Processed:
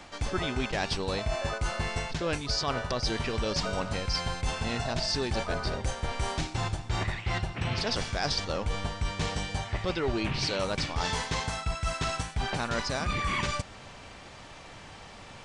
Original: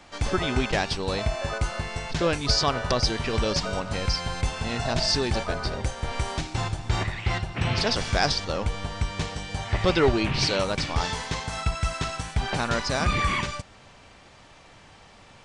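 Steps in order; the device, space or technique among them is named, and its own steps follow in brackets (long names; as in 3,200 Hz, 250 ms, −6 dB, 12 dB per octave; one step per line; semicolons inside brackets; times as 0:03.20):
compression on the reversed sound (reversed playback; downward compressor, threshold −31 dBFS, peak gain reduction 14.5 dB; reversed playback)
level +4 dB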